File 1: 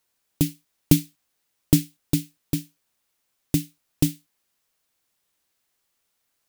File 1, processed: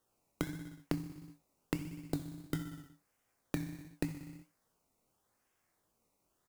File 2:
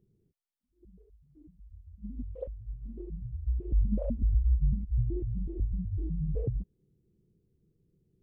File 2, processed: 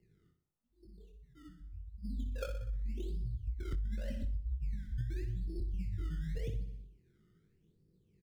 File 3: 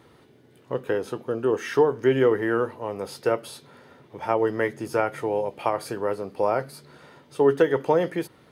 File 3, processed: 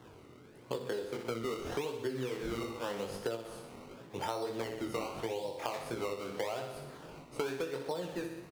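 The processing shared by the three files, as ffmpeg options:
-filter_complex "[0:a]acrossover=split=120|5100[s0][s1][s2];[s1]acrusher=samples=18:mix=1:aa=0.000001:lfo=1:lforange=18:lforate=0.86[s3];[s2]asoftclip=type=tanh:threshold=0.0562[s4];[s0][s3][s4]amix=inputs=3:normalize=0,highshelf=f=6600:g=-8,aecho=1:1:61|122|183|244|305|366:0.355|0.181|0.0923|0.0471|0.024|0.0122,flanger=delay=17:depth=7.4:speed=1.5,acompressor=threshold=0.0158:ratio=16,volume=1.41"

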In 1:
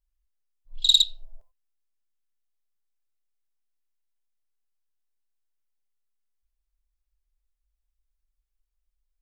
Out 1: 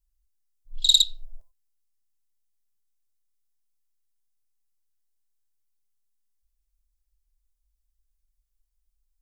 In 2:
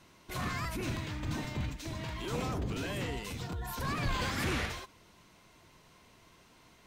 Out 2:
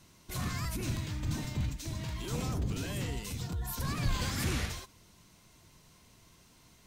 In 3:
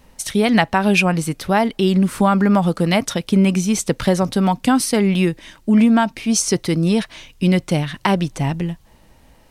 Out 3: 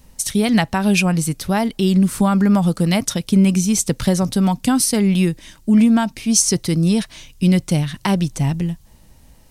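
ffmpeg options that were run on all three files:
-af "bass=f=250:g=8,treble=f=4000:g=10,volume=0.596"

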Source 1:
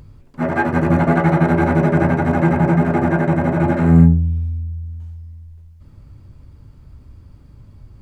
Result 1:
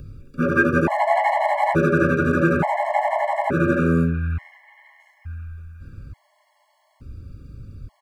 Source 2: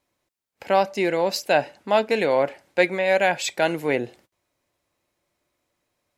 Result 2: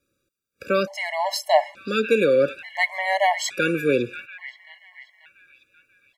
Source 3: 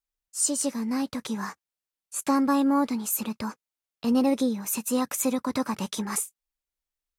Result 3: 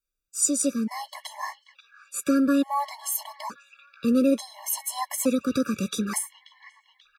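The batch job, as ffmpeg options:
-filter_complex "[0:a]acrossover=split=360|1600|3200[s0][s1][s2][s3];[s0]acompressor=threshold=0.0562:ratio=6[s4];[s2]aecho=1:1:536|1072|1608|2144|2680|3216:0.501|0.231|0.106|0.0488|0.0224|0.0103[s5];[s4][s1][s5][s3]amix=inputs=4:normalize=0,afftfilt=real='re*gt(sin(2*PI*0.57*pts/sr)*(1-2*mod(floor(b*sr/1024/560),2)),0)':imag='im*gt(sin(2*PI*0.57*pts/sr)*(1-2*mod(floor(b*sr/1024/560),2)),0)':win_size=1024:overlap=0.75,volume=1.58"

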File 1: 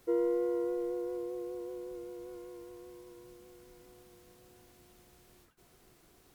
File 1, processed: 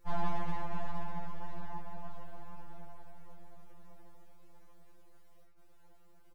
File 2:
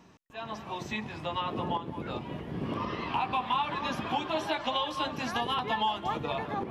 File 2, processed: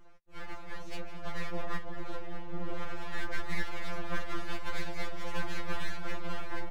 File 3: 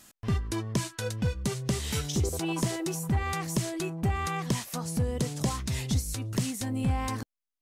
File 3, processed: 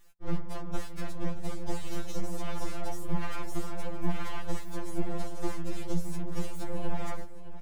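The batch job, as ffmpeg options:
-filter_complex "[0:a]highshelf=f=2100:g=-10,afftfilt=real='hypot(re,im)*cos(2*PI*random(0))':imag='hypot(re,im)*sin(2*PI*random(1))':win_size=512:overlap=0.75,aeval=exprs='abs(val(0))':c=same,equalizer=f=4600:t=o:w=2.4:g=-2,asplit=2[s0][s1];[s1]aeval=exprs='clip(val(0),-1,0.0112)':c=same,volume=0.299[s2];[s0][s2]amix=inputs=2:normalize=0,aecho=1:1:617|1234|1851|2468|3085:0.188|0.0923|0.0452|0.0222|0.0109,afftfilt=real='re*2.83*eq(mod(b,8),0)':imag='im*2.83*eq(mod(b,8),0)':win_size=2048:overlap=0.75,volume=1.88"

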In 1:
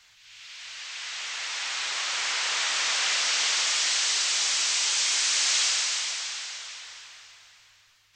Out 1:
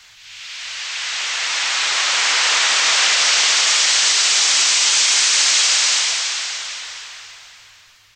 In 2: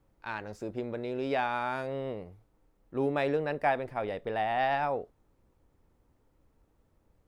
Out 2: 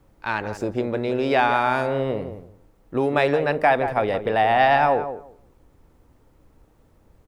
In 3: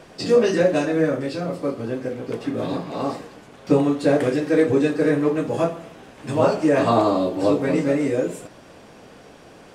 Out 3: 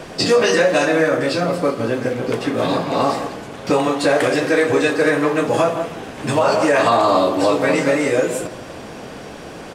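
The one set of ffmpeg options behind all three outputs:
-filter_complex "[0:a]acrossover=split=630[s0][s1];[s0]acompressor=threshold=0.0251:ratio=6[s2];[s2][s1]amix=inputs=2:normalize=0,asplit=2[s3][s4];[s4]adelay=171,lowpass=f=1400:p=1,volume=0.335,asplit=2[s5][s6];[s6]adelay=171,lowpass=f=1400:p=1,volume=0.18,asplit=2[s7][s8];[s8]adelay=171,lowpass=f=1400:p=1,volume=0.18[s9];[s3][s5][s7][s9]amix=inputs=4:normalize=0,alimiter=level_in=6.68:limit=0.891:release=50:level=0:latency=1,volume=0.562"

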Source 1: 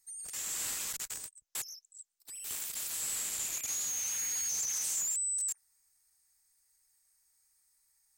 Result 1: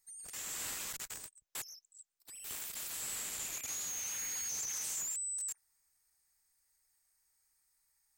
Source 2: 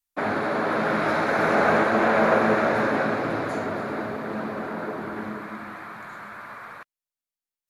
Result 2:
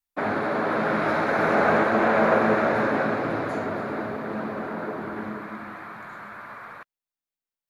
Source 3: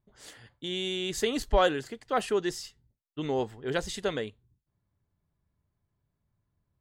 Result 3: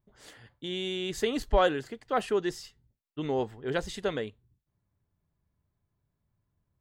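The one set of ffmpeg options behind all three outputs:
-af "equalizer=f=8500:t=o:w=2.2:g=-5.5"

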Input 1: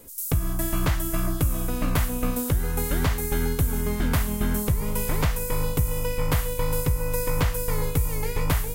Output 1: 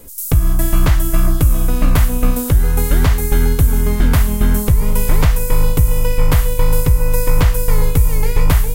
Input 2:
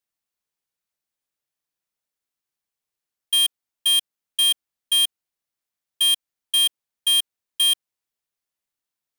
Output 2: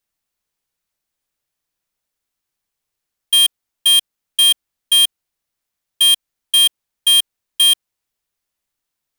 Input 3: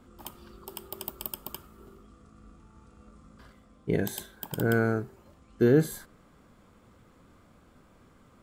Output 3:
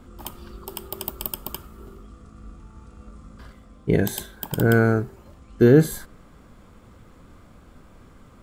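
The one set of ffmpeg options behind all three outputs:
-af "lowshelf=f=69:g=10,volume=2.11"

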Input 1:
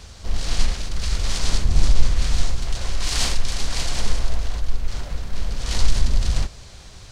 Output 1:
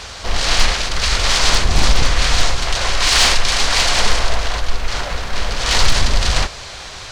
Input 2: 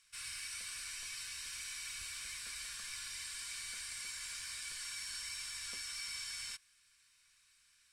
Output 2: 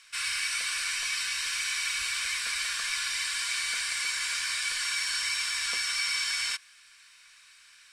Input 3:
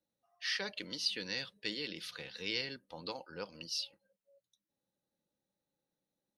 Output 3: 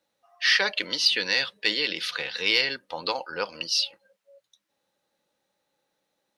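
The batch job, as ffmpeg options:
-filter_complex "[0:a]equalizer=f=220:t=o:w=2.1:g=-4.5,aeval=exprs='0.447*(abs(mod(val(0)/0.447+3,4)-2)-1)':c=same,asplit=2[s0][s1];[s1]highpass=f=720:p=1,volume=6.31,asoftclip=type=tanh:threshold=0.473[s2];[s0][s2]amix=inputs=2:normalize=0,lowpass=f=2900:p=1,volume=0.501,volume=2.51"

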